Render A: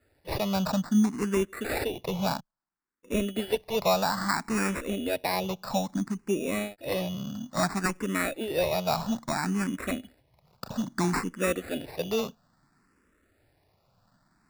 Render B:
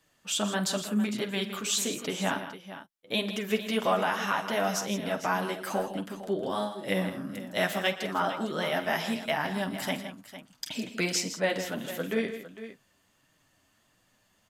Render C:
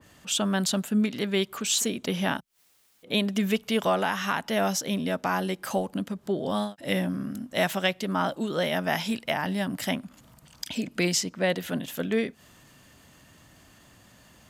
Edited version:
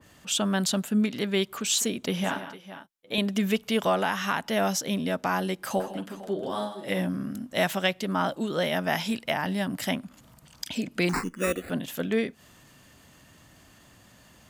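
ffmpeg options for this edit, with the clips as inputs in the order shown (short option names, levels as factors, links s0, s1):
-filter_complex "[1:a]asplit=2[s0][s1];[2:a]asplit=4[s2][s3][s4][s5];[s2]atrim=end=2.242[s6];[s0]atrim=start=2.238:end=3.182[s7];[s3]atrim=start=3.178:end=5.802[s8];[s1]atrim=start=5.798:end=6.992[s9];[s4]atrim=start=6.988:end=11.092[s10];[0:a]atrim=start=11.088:end=11.702[s11];[s5]atrim=start=11.698[s12];[s6][s7]acrossfade=d=0.004:c1=hsin:c2=hsin[s13];[s13][s8]acrossfade=d=0.004:c1=hsin:c2=hsin[s14];[s14][s9]acrossfade=d=0.004:c1=hsin:c2=hsin[s15];[s15][s10]acrossfade=d=0.004:c1=hsin:c2=hsin[s16];[s16][s11]acrossfade=d=0.004:c1=hsin:c2=hsin[s17];[s17][s12]acrossfade=d=0.004:c1=hsin:c2=hsin"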